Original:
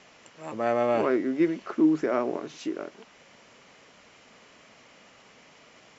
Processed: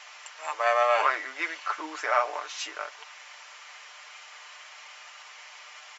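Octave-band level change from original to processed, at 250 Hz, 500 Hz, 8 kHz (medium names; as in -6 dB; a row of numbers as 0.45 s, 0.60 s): -23.5 dB, -3.5 dB, no reading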